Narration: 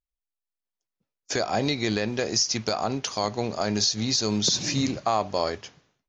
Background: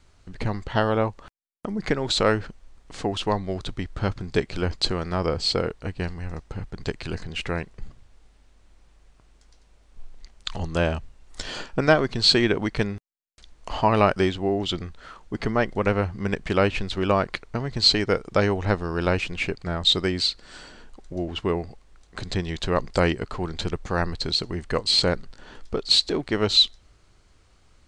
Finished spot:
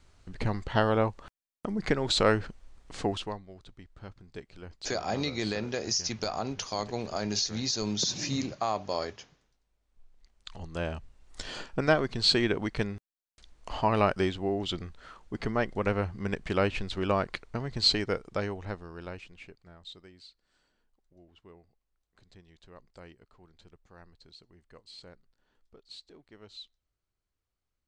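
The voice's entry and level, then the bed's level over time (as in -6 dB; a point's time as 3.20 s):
3.55 s, -6.0 dB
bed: 3.10 s -3 dB
3.46 s -20 dB
9.81 s -20 dB
11.29 s -6 dB
17.93 s -6 dB
20.10 s -29 dB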